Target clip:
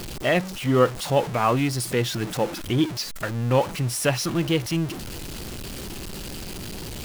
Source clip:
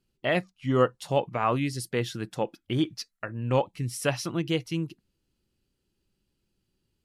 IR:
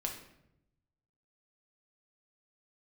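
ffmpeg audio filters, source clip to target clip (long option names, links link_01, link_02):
-af "aeval=exprs='val(0)+0.5*0.0282*sgn(val(0))':channel_layout=same,volume=3dB"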